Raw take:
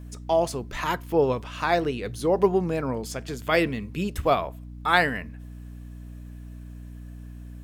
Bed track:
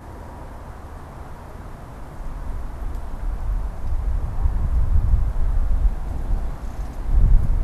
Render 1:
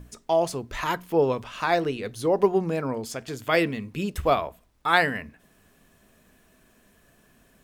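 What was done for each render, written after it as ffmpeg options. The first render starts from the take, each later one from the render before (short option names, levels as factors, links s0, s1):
-af "bandreject=f=60:t=h:w=6,bandreject=f=120:t=h:w=6,bandreject=f=180:t=h:w=6,bandreject=f=240:t=h:w=6,bandreject=f=300:t=h:w=6"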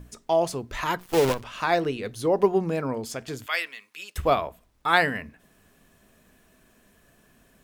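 -filter_complex "[0:a]asplit=3[s0][s1][s2];[s0]afade=t=out:st=0.98:d=0.02[s3];[s1]acrusher=bits=5:dc=4:mix=0:aa=0.000001,afade=t=in:st=0.98:d=0.02,afade=t=out:st=1.4:d=0.02[s4];[s2]afade=t=in:st=1.4:d=0.02[s5];[s3][s4][s5]amix=inputs=3:normalize=0,asettb=1/sr,asplit=3[s6][s7][s8];[s6]atrim=end=3.464[s9];[s7]atrim=start=3.46:end=4.16,asetpts=PTS-STARTPTS,afade=t=in:d=0.004:c=qsin,afade=t=out:st=0.696:d=0.004:c=qsin,highpass=1400[s10];[s8]atrim=start=4.156[s11];[s9][s10]acrossfade=d=0.004:c1=hsin:c2=qsin[s12];[s12][s11]acrossfade=d=0.004:c1=qsin:c2=hsin"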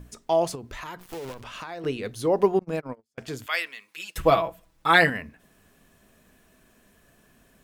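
-filter_complex "[0:a]asettb=1/sr,asplit=3[s0][s1][s2];[s0]atrim=end=0.554[s3];[s1]atrim=start=0.55:end=1.84,asetpts=PTS-STARTPTS,afade=t=in:d=0.004:c=qsin,afade=t=out:st=1.286:d=0.004:c=qsin,acompressor=threshold=0.02:ratio=6:attack=3.2:release=140:knee=1:detection=peak[s4];[s2]atrim=start=1.836[s5];[s3][s4]acrossfade=d=0.004:c1=hsin:c2=qsin[s6];[s6][s5]acrossfade=d=0.004:c1=qsin:c2=hsin,asettb=1/sr,asplit=3[s7][s8][s9];[s7]atrim=end=2.594[s10];[s8]atrim=start=2.59:end=3.18,asetpts=PTS-STARTPTS,afade=t=in:d=0.004:c=qsin,afade=t=out:st=0.586:d=0.004:c=qsin,agate=range=0.00501:threshold=0.0447:ratio=16:release=100:detection=peak[s11];[s9]atrim=start=3.176[s12];[s10][s11]acrossfade=d=0.004:c1=hsin:c2=qsin[s13];[s13][s12]acrossfade=d=0.004:c1=qsin:c2=hsin,asettb=1/sr,asplit=3[s14][s15][s16];[s14]atrim=end=3.884[s17];[s15]atrim=start=3.88:end=5.1,asetpts=PTS-STARTPTS,afade=t=in:d=0.004:c=qsin,afade=t=out:st=1.216:d=0.004:c=qsin,aecho=1:1:6.1:0.93,atrim=end_sample=53802[s18];[s16]atrim=start=5.096[s19];[s17][s18]acrossfade=d=0.004:c1=hsin:c2=qsin[s20];[s20][s19]acrossfade=d=0.004:c1=qsin:c2=hsin"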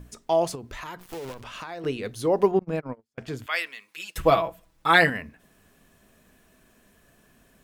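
-filter_complex "[0:a]asettb=1/sr,asplit=3[s0][s1][s2];[s0]atrim=end=2.514[s3];[s1]atrim=start=2.51:end=3.56,asetpts=PTS-STARTPTS,afade=t=in:d=0.004:c=qsin,afade=t=out:st=1.046:d=0.004:c=qsin,bass=f=250:g=3,treble=f=4000:g=-7[s4];[s2]atrim=start=3.556[s5];[s3][s4]acrossfade=d=0.004:c1=hsin:c2=qsin[s6];[s6][s5]acrossfade=d=0.004:c1=qsin:c2=hsin"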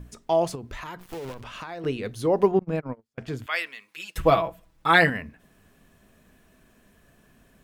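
-af "bass=f=250:g=3,treble=f=4000:g=-3"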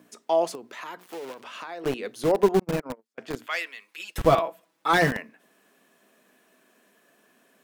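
-filter_complex "[0:a]acrossover=split=240|1100|4200[s0][s1][s2][s3];[s0]acrusher=bits=4:mix=0:aa=0.000001[s4];[s2]asoftclip=type=tanh:threshold=0.0708[s5];[s4][s1][s5][s3]amix=inputs=4:normalize=0"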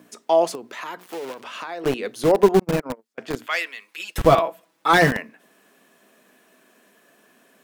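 -af "volume=1.78,alimiter=limit=0.708:level=0:latency=1"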